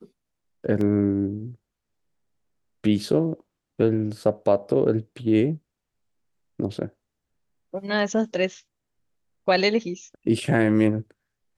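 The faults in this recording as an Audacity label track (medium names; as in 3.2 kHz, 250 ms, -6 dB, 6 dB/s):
0.810000	0.810000	dropout 2.7 ms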